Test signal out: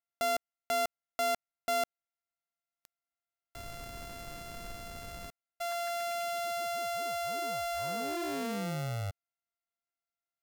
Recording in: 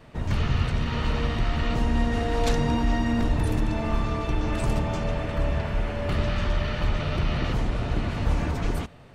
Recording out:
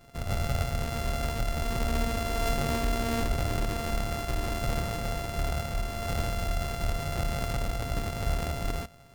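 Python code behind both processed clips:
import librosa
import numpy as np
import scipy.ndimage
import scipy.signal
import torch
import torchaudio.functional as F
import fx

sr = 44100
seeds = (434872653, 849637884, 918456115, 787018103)

y = np.r_[np.sort(x[:len(x) // 64 * 64].reshape(-1, 64), axis=1).ravel(), x[len(x) // 64 * 64:]]
y = F.gain(torch.from_numpy(y), -5.0).numpy()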